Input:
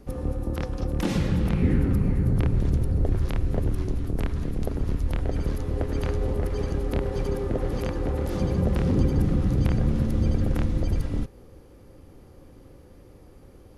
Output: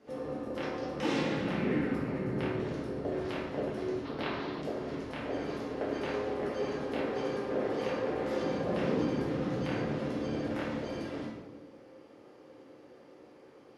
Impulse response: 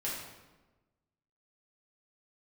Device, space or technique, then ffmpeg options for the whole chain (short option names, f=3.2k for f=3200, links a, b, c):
supermarket ceiling speaker: -filter_complex "[0:a]highpass=350,lowpass=5.2k[a];[1:a]atrim=start_sample=2205[b];[a][b]afir=irnorm=-1:irlink=0,asettb=1/sr,asplit=3[c][d][e];[c]atrim=end=4.054[f];[d]atrim=start=4.05:end=4.62,asetpts=PTS-STARTPTS,afade=t=in:d=0.004:c=qsin,afade=t=out:st=0.566:d=0.004:c=qsin,equalizer=f=1k:t=o:w=1:g=6,equalizer=f=4k:t=o:w=1:g=11,equalizer=f=8k:t=o:w=1:g=-10[g];[e]atrim=start=4.616[h];[f][g]acrossfade=d=0.004:c1=hsin:c2=qsin[i];[i][h]acrossfade=d=0.004:c1=qsin:c2=hsin,volume=-2.5dB"